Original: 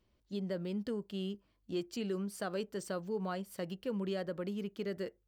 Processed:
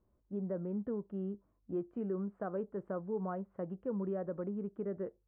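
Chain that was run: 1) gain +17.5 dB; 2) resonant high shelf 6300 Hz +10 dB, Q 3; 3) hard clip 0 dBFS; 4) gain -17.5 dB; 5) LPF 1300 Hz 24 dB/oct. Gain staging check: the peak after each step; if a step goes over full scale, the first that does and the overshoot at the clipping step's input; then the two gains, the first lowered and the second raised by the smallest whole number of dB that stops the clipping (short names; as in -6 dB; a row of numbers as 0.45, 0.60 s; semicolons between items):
-8.5, -4.0, -4.0, -21.5, -27.0 dBFS; no overload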